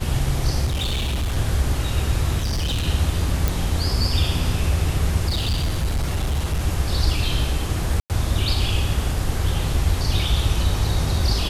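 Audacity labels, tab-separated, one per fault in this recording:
0.650000	1.370000	clipped -19.5 dBFS
2.400000	2.880000	clipped -19.5 dBFS
3.480000	3.480000	pop
5.280000	6.610000	clipped -18 dBFS
8.000000	8.100000	gap 98 ms

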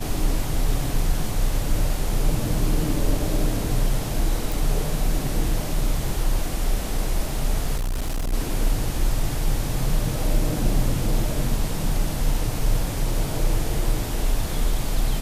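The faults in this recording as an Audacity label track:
4.520000	4.520000	pop
7.760000	8.340000	clipped -21.5 dBFS

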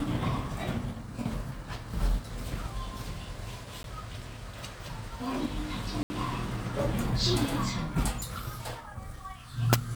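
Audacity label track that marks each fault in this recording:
3.830000	3.840000	gap 12 ms
6.030000	6.100000	gap 70 ms

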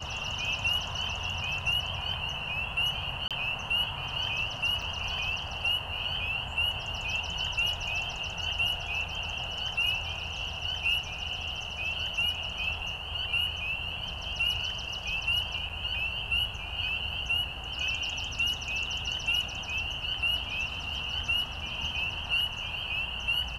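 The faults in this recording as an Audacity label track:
3.280000	3.310000	gap 27 ms
4.820000	4.820000	gap 4.1 ms
15.690000	15.700000	gap 6 ms

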